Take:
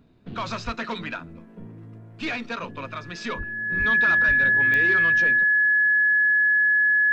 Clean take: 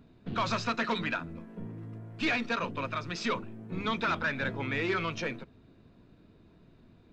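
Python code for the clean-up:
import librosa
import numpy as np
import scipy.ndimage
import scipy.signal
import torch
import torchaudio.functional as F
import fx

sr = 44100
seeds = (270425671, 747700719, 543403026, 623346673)

y = fx.fix_declick_ar(x, sr, threshold=10.0)
y = fx.notch(y, sr, hz=1700.0, q=30.0)
y = fx.fix_deplosive(y, sr, at_s=(0.65, 3.37, 3.78, 4.27))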